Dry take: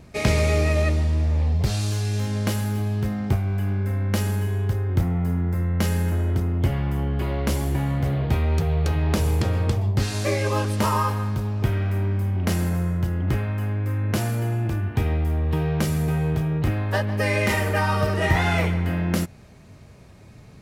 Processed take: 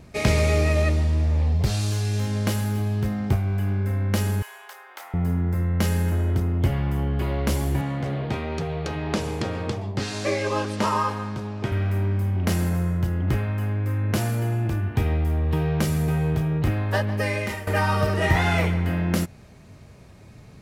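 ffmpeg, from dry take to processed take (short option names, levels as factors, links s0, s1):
-filter_complex "[0:a]asettb=1/sr,asplit=3[s0][s1][s2];[s0]atrim=end=4.424[s3];[s1]atrim=start=4.42:end=5.14,asetpts=PTS-STARTPTS,afade=t=in:d=0.004:c=qsin,afade=t=out:st=0.716:d=0.004:c=qsin,highpass=f=780:w=0.5412,highpass=f=780:w=1.3066[s4];[s2]atrim=start=5.136[s5];[s3][s4]acrossfade=d=0.004:c1=hsin:c2=qsin[s6];[s6][s5]acrossfade=d=0.004:c1=qsin:c2=hsin,asettb=1/sr,asplit=3[s7][s8][s9];[s7]atrim=end=7.814[s10];[s8]atrim=start=7.81:end=11.72,asetpts=PTS-STARTPTS,afade=t=in:d=0.004:c=qsin,afade=t=out:st=3.906:d=0.004:c=qsin,highpass=160,lowpass=7200[s11];[s9]atrim=start=11.716[s12];[s10][s11]acrossfade=d=0.004:c1=hsin:c2=qsin[s13];[s13][s12]acrossfade=d=0.004:c1=qsin:c2=hsin,asplit=2[s14][s15];[s14]atrim=end=17.67,asetpts=PTS-STARTPTS,afade=t=out:st=17.09:d=0.58:silence=0.177828[s16];[s15]atrim=start=17.67,asetpts=PTS-STARTPTS,afade=t=in:d=0.004:c=hsin:silence=0.177828[s17];[s16][s17]concat=n=2:v=0:a=1"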